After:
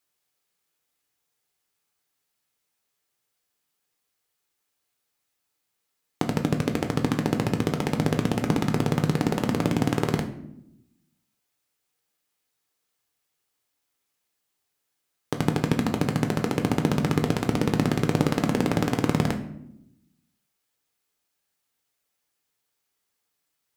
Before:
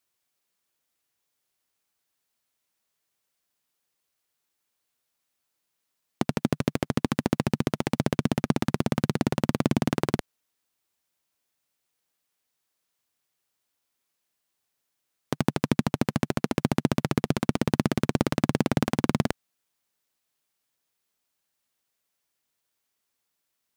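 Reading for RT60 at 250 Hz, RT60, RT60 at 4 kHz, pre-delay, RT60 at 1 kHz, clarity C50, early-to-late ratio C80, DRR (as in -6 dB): 1.2 s, 0.80 s, 0.45 s, 7 ms, 0.70 s, 11.0 dB, 13.5 dB, 4.0 dB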